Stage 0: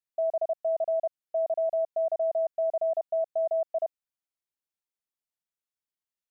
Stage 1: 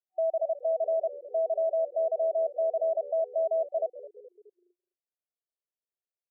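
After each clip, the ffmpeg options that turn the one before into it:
-filter_complex "[0:a]asplit=6[s0][s1][s2][s3][s4][s5];[s1]adelay=211,afreqshift=-78,volume=0.15[s6];[s2]adelay=422,afreqshift=-156,volume=0.0822[s7];[s3]adelay=633,afreqshift=-234,volume=0.0452[s8];[s4]adelay=844,afreqshift=-312,volume=0.0248[s9];[s5]adelay=1055,afreqshift=-390,volume=0.0136[s10];[s0][s6][s7][s8][s9][s10]amix=inputs=6:normalize=0,afftfilt=real='re*between(b*sr/4096,350,750)':imag='im*between(b*sr/4096,350,750)':win_size=4096:overlap=0.75"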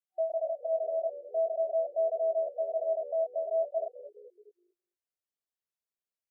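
-af "flanger=delay=16.5:depth=6.3:speed=0.46"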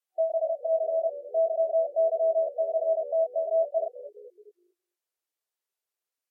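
-af "volume=1.68" -ar 44100 -c:a libvorbis -b:a 64k

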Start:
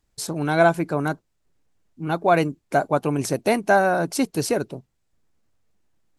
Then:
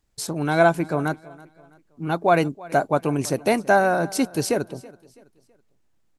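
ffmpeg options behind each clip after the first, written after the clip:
-af "aecho=1:1:328|656|984:0.0841|0.032|0.0121"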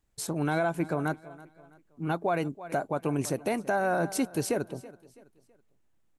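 -af "equalizer=f=4900:t=o:w=0.69:g=-5,alimiter=limit=0.188:level=0:latency=1:release=166,volume=0.668"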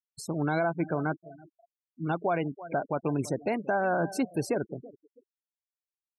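-filter_complex "[0:a]afftfilt=real='re*gte(hypot(re,im),0.0178)':imag='im*gte(hypot(re,im),0.0178)':win_size=1024:overlap=0.75,acrossover=split=6200[s0][s1];[s1]acompressor=threshold=0.00708:ratio=4:attack=1:release=60[s2];[s0][s2]amix=inputs=2:normalize=0"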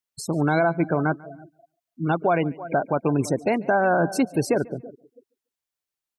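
-af "aecho=1:1:143|286:0.0708|0.0163,volume=2.24"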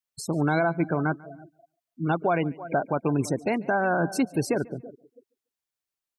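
-af "adynamicequalizer=threshold=0.02:dfrequency=580:dqfactor=1.5:tfrequency=580:tqfactor=1.5:attack=5:release=100:ratio=0.375:range=2:mode=cutabove:tftype=bell,volume=0.794"

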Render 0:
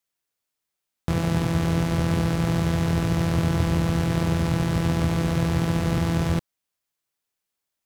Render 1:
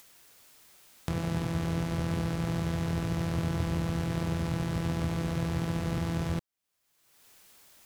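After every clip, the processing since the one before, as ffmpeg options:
-af "acompressor=mode=upward:threshold=0.0708:ratio=2.5,volume=0.398"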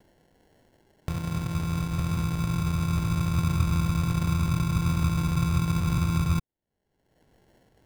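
-af "asubboost=boost=5.5:cutoff=220,acrusher=samples=36:mix=1:aa=0.000001,volume=0.596"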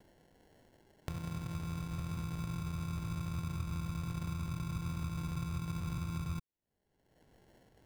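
-af "acompressor=threshold=0.0126:ratio=2.5,volume=0.75"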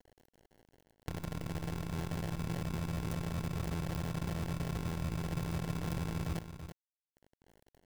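-af "acrusher=bits=7:dc=4:mix=0:aa=0.000001,aecho=1:1:331:0.335"

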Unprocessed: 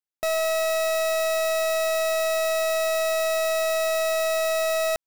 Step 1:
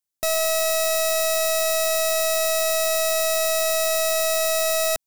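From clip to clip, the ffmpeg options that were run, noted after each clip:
-af "bass=f=250:g=6,treble=f=4000:g=10"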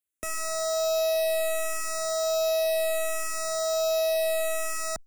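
-filter_complex "[0:a]acrossover=split=630[s0][s1];[s1]asoftclip=type=tanh:threshold=0.106[s2];[s0][s2]amix=inputs=2:normalize=0,asplit=2[s3][s4];[s4]afreqshift=-0.68[s5];[s3][s5]amix=inputs=2:normalize=1"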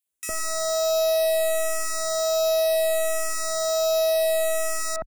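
-filter_complex "[0:a]acrossover=split=1900[s0][s1];[s0]adelay=60[s2];[s2][s1]amix=inputs=2:normalize=0,volume=1.58"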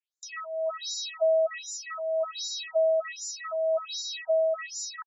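-af "afftfilt=real='re*between(b*sr/1024,510*pow(5500/510,0.5+0.5*sin(2*PI*1.3*pts/sr))/1.41,510*pow(5500/510,0.5+0.5*sin(2*PI*1.3*pts/sr))*1.41)':imag='im*between(b*sr/1024,510*pow(5500/510,0.5+0.5*sin(2*PI*1.3*pts/sr))/1.41,510*pow(5500/510,0.5+0.5*sin(2*PI*1.3*pts/sr))*1.41)':win_size=1024:overlap=0.75"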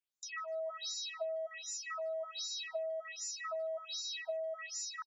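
-filter_complex "[0:a]acompressor=threshold=0.0224:ratio=12,asplit=2[s0][s1];[s1]adelay=150,highpass=300,lowpass=3400,asoftclip=type=hard:threshold=0.0119,volume=0.0891[s2];[s0][s2]amix=inputs=2:normalize=0,volume=0.668"

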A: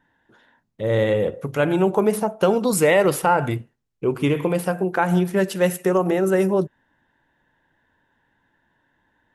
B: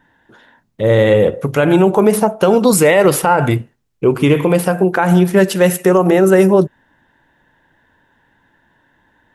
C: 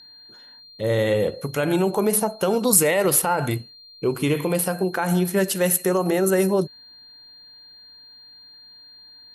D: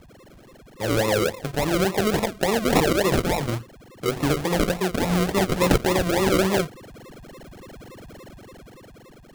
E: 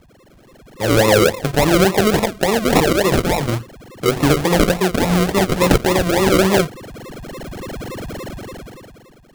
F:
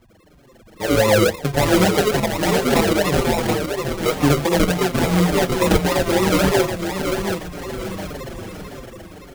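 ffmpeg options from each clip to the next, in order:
-af "alimiter=level_in=3.35:limit=0.891:release=50:level=0:latency=1,volume=0.891"
-af "aemphasis=mode=production:type=50fm,aeval=exprs='val(0)+0.0178*sin(2*PI*4200*n/s)':c=same,volume=0.335"
-filter_complex "[0:a]acrossover=split=120|930[s0][s1][s2];[s2]dynaudnorm=f=290:g=9:m=2.37[s3];[s0][s1][s3]amix=inputs=3:normalize=0,acrusher=samples=40:mix=1:aa=0.000001:lfo=1:lforange=24:lforate=3.5,volume=0.841"
-af "dynaudnorm=f=120:g=13:m=5.62,volume=0.891"
-filter_complex "[0:a]asplit=2[s0][s1];[s1]aecho=0:1:728|1456|2184|2912:0.501|0.18|0.065|0.0234[s2];[s0][s2]amix=inputs=2:normalize=0,asplit=2[s3][s4];[s4]adelay=5.5,afreqshift=-1.8[s5];[s3][s5]amix=inputs=2:normalize=1"

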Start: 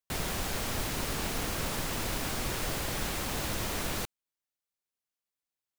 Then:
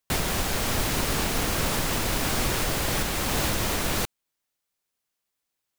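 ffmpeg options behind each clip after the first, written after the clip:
-af "alimiter=limit=0.0668:level=0:latency=1:release=437,volume=2.82"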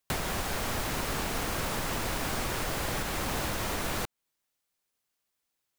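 -filter_complex "[0:a]acrossover=split=560|2000[s0][s1][s2];[s0]acompressor=threshold=0.0224:ratio=4[s3];[s1]acompressor=threshold=0.0178:ratio=4[s4];[s2]acompressor=threshold=0.0141:ratio=4[s5];[s3][s4][s5]amix=inputs=3:normalize=0"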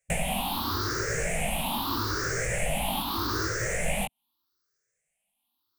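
-af "afftfilt=real='re*pow(10,24/40*sin(2*PI*(0.52*log(max(b,1)*sr/1024/100)/log(2)-(0.8)*(pts-256)/sr)))':imag='im*pow(10,24/40*sin(2*PI*(0.52*log(max(b,1)*sr/1024/100)/log(2)-(0.8)*(pts-256)/sr)))':win_size=1024:overlap=0.75,flanger=delay=17.5:depth=4:speed=0.82"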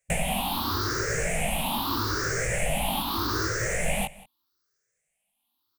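-af "aecho=1:1:184:0.0944,volume=1.19"

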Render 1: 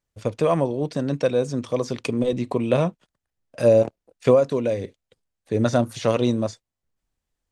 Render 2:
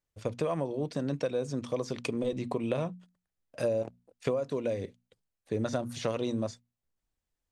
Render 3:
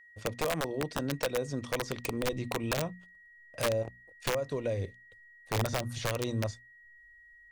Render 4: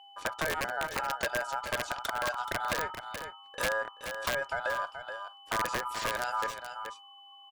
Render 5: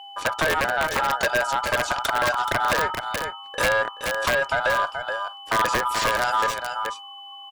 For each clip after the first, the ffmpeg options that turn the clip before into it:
-af "bandreject=f=60:t=h:w=6,bandreject=f=120:t=h:w=6,bandreject=f=180:t=h:w=6,bandreject=f=240:t=h:w=6,acompressor=threshold=0.0891:ratio=6,volume=0.531"
-af "aeval=exprs='val(0)+0.002*sin(2*PI*1900*n/s)':c=same,asubboost=boost=7:cutoff=82,aeval=exprs='(mod(13.3*val(0)+1,2)-1)/13.3':c=same"
-af "aeval=exprs='val(0)*sin(2*PI*1100*n/s)':c=same,aecho=1:1:427:0.266,acompressor=threshold=0.01:ratio=1.5,volume=2"
-af "aeval=exprs='0.126*sin(PI/2*2*val(0)/0.126)':c=same,volume=1.33"

